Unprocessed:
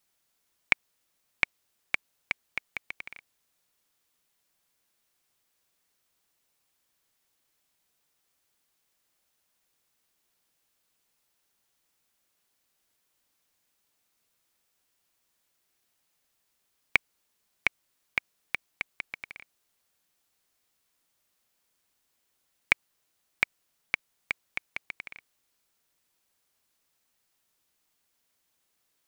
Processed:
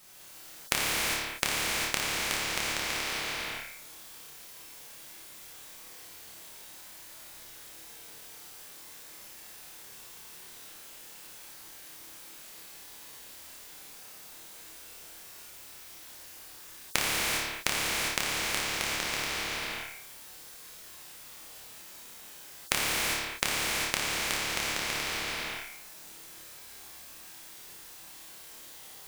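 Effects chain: 2.66–3.09 HPF 320 Hz 12 dB/oct; flutter echo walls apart 4.8 m, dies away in 0.46 s; non-linear reverb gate 0.43 s flat, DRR -6 dB; spectral compressor 4:1

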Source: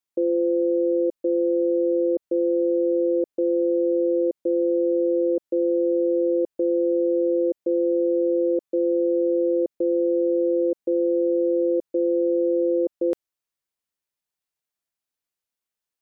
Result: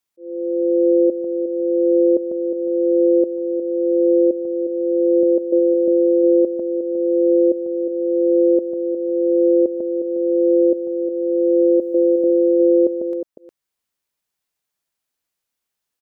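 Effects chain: 5.23–5.88 HPF 310 Hz 6 dB/oct; 11.81–12.24 tilt +2.5 dB/oct; auto swell 0.725 s; echo 0.359 s -9 dB; gain +6.5 dB

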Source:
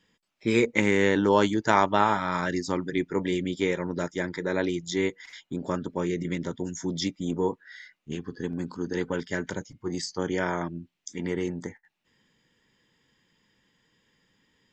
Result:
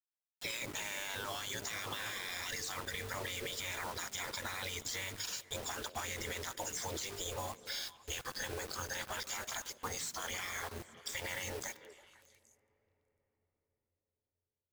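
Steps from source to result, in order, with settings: spectral gate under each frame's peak -15 dB weak; high shelf 4700 Hz +11 dB; notches 50/100/150/200/250/300/350/400/450 Hz; limiter -37 dBFS, peak gain reduction 24.5 dB; compressor 6:1, threshold -52 dBFS, peak gain reduction 9.5 dB; bit-crush 10-bit; modulation noise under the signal 15 dB; delay with a stepping band-pass 0.166 s, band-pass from 180 Hz, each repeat 1.4 oct, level -9 dB; on a send at -23 dB: reverb RT60 5.0 s, pre-delay 8 ms; on the sum: gain +14 dB

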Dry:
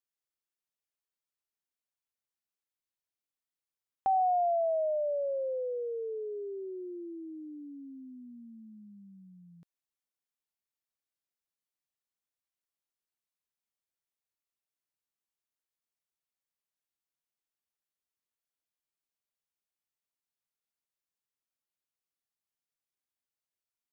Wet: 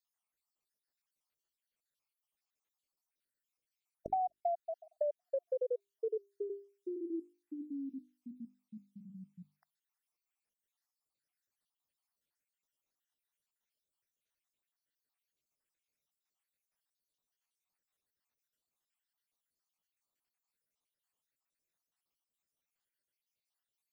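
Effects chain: random spectral dropouts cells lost 66%; compressor 12:1, threshold -37 dBFS, peak gain reduction 12 dB; notches 50/100/150/200/250/300/350/400 Hz; gain +6 dB

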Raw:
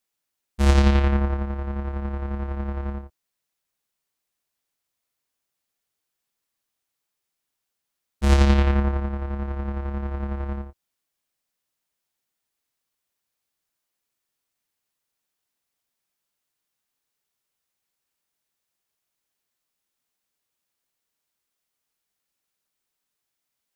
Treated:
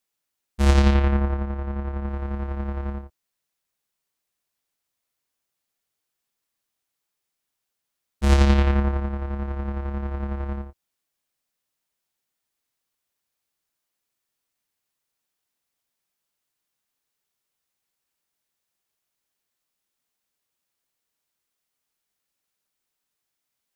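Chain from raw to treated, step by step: 0.94–2.09 high shelf 4400 Hz -7.5 dB

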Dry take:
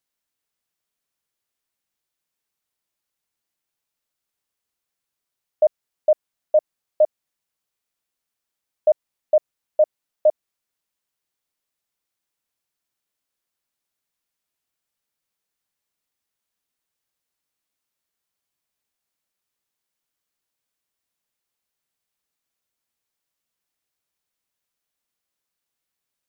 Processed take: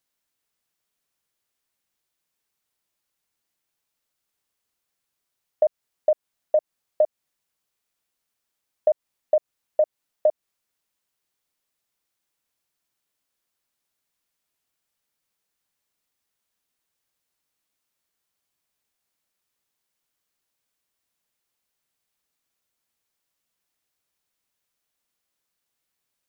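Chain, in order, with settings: compressor, threshold -19 dBFS, peak gain reduction 7 dB; gain +2.5 dB

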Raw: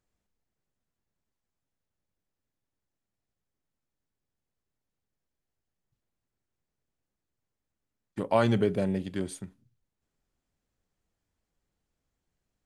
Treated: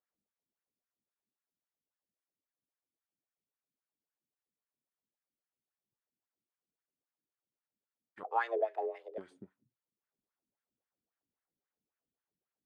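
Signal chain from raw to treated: wah 3.7 Hz 220–1700 Hz, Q 2.3; 8.23–9.18 frequency shift +230 Hz; gain -2.5 dB

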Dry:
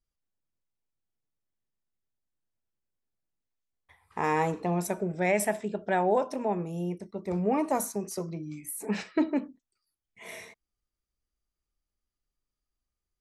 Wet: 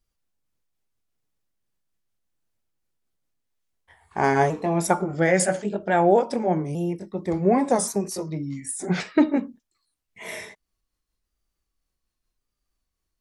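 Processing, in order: repeated pitch sweeps -2.5 st, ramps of 1.125 s; spectral gain 4.9–5.16, 700–1500 Hz +11 dB; gain +8 dB

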